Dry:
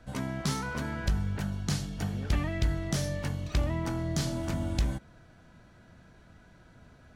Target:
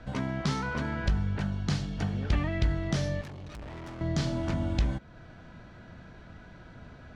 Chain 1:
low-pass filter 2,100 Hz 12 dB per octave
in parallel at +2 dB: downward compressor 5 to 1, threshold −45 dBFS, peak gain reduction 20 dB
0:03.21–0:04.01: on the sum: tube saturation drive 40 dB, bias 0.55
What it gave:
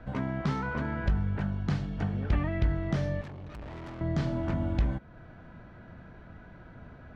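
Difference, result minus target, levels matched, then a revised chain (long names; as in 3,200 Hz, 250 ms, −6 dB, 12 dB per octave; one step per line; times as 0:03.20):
4,000 Hz band −8.5 dB
low-pass filter 4,500 Hz 12 dB per octave
in parallel at +2 dB: downward compressor 5 to 1, threshold −45 dBFS, peak gain reduction 20 dB
0:03.21–0:04.01: on the sum: tube saturation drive 40 dB, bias 0.55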